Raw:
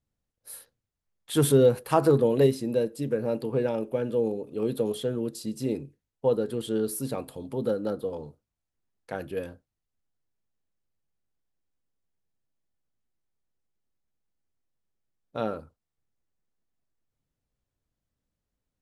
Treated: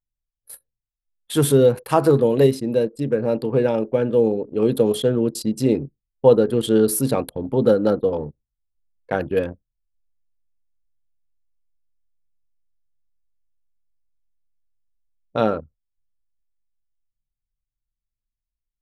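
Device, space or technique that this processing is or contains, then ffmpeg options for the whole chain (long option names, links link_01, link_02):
voice memo with heavy noise removal: -af "anlmdn=0.251,dynaudnorm=framelen=550:gausssize=13:maxgain=8dB,volume=4dB"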